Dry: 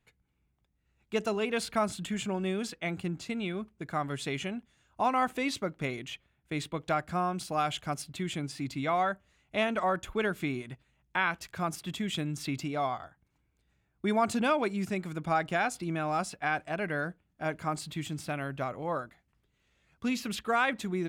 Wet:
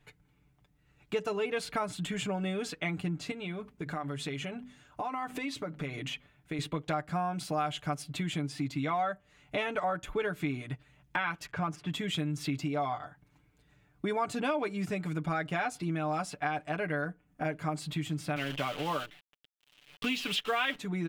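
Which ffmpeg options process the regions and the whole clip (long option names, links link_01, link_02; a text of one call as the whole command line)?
ffmpeg -i in.wav -filter_complex "[0:a]asettb=1/sr,asplit=3[link_01][link_02][link_03];[link_01]atrim=end=3.314[link_04];[link_02]atrim=start=3.31:end=6.59,asetpts=PTS-STARTPTS,afade=type=in:duration=0.004:curve=qsin,afade=type=out:start_time=3.276:duration=0.004:curve=qsin,bandreject=frequency=50:width_type=h:width=6,bandreject=frequency=100:width_type=h:width=6,bandreject=frequency=150:width_type=h:width=6,bandreject=frequency=200:width_type=h:width=6,bandreject=frequency=250:width_type=h:width=6,acompressor=threshold=-42dB:ratio=2.5:attack=3.2:release=140:knee=1:detection=peak[link_05];[link_03]atrim=start=6.586[link_06];[link_04][link_05]acrossfade=duration=0.004:curve1=hsin:curve2=qsin[link_07];[link_07][link_06]acrossfade=duration=0.004:curve1=qsin:curve2=hsin,asettb=1/sr,asplit=3[link_08][link_09][link_10];[link_08]atrim=end=11.464[link_11];[link_09]atrim=start=11.46:end=11.91,asetpts=PTS-STARTPTS,afade=type=in:duration=0.004:curve=qsin,afade=type=out:start_time=0.446:duration=0.004:curve=qsin,equalizer=frequency=3900:width=2.5:gain=-6.5,adynamicsmooth=sensitivity=7.5:basefreq=4400[link_12];[link_10]atrim=start=11.906[link_13];[link_11][link_12]acrossfade=duration=0.004:curve1=hsin:curve2=qsin[link_14];[link_14][link_13]acrossfade=duration=0.004:curve1=qsin:curve2=hsin,asettb=1/sr,asplit=3[link_15][link_16][link_17];[link_15]atrim=end=17.054[link_18];[link_16]atrim=start=17.05:end=17.45,asetpts=PTS-STARTPTS,afade=type=in:duration=0.004:curve=qsin,afade=type=out:start_time=0.396:duration=0.004:curve=qsin,equalizer=frequency=3900:width=1.6:gain=-8,aecho=1:1:4.1:0.33,atrim=end_sample=17640[link_19];[link_17]atrim=start=17.446[link_20];[link_18][link_19]acrossfade=duration=0.004:curve1=hsin:curve2=qsin[link_21];[link_21][link_20]acrossfade=duration=0.004:curve1=qsin:curve2=hsin,asettb=1/sr,asplit=3[link_22][link_23][link_24];[link_22]atrim=end=18.364[link_25];[link_23]atrim=start=18.36:end=20.78,asetpts=PTS-STARTPTS,afade=type=in:duration=0.004:curve=qsin,afade=type=out:start_time=2.416:duration=0.004:curve=qsin,highpass=140,acrusher=bits=8:dc=4:mix=0:aa=0.000001,equalizer=frequency=3000:width=1.9:gain=15[link_26];[link_24]atrim=start=20.776[link_27];[link_25][link_26]acrossfade=duration=0.004:curve1=hsin:curve2=qsin[link_28];[link_28][link_27]acrossfade=duration=0.004:curve1=qsin:curve2=hsin,bass=frequency=250:gain=0,treble=frequency=4000:gain=-4,aecho=1:1:6.8:0.69,acompressor=threshold=-43dB:ratio=2.5,volume=8dB" out.wav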